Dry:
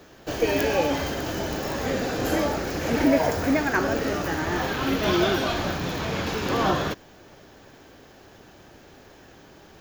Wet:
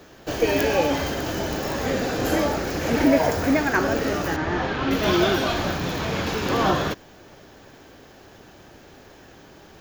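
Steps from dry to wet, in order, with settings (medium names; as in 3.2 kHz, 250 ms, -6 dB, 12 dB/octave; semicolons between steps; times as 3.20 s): 4.36–4.91 s: distance through air 140 m; trim +2 dB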